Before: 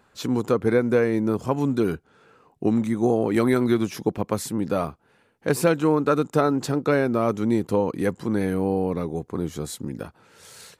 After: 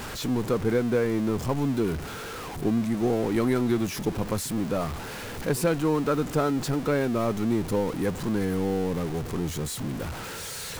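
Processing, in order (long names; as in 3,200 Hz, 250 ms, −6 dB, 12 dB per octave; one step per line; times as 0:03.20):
converter with a step at zero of −25 dBFS
low-shelf EQ 91 Hz +10 dB
level −6.5 dB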